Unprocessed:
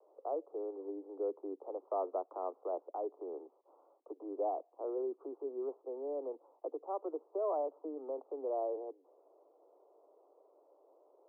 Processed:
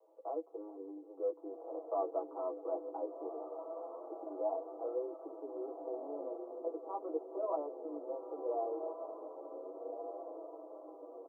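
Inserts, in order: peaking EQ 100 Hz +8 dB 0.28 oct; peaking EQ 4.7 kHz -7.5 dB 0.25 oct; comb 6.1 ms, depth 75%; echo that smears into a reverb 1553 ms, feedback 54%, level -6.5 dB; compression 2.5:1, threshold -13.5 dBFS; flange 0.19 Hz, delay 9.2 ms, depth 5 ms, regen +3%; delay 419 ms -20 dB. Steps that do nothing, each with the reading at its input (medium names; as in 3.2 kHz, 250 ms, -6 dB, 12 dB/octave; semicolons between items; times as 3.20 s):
peaking EQ 100 Hz: input has nothing below 240 Hz; peaking EQ 4.7 kHz: input has nothing above 1.2 kHz; compression, threshold -13.5 dBFS: peak at its input -21.5 dBFS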